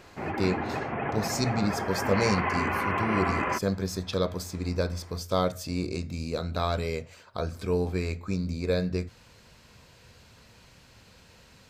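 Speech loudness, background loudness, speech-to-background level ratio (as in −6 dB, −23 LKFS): −30.5 LKFS, −30.0 LKFS, −0.5 dB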